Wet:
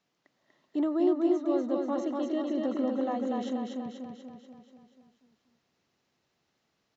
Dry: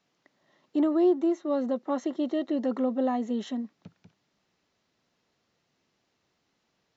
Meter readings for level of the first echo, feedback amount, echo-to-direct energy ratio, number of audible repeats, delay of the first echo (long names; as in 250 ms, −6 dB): −3.0 dB, 57%, −1.5 dB, 7, 242 ms